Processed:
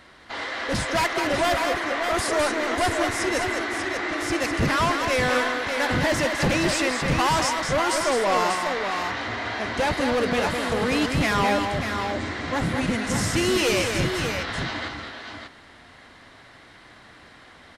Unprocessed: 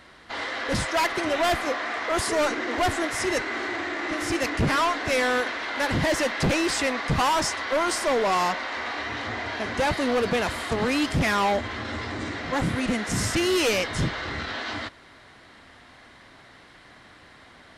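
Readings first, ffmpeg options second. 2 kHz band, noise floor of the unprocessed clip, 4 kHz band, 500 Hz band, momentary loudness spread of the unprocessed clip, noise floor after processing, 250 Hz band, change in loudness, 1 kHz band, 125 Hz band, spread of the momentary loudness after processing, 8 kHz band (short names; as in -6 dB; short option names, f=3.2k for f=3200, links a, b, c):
+1.5 dB, -51 dBFS, +1.5 dB, +1.5 dB, 8 LU, -49 dBFS, +1.5 dB, +1.5 dB, +1.5 dB, +2.0 dB, 7 LU, +1.5 dB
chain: -af "aecho=1:1:207|592:0.501|0.473"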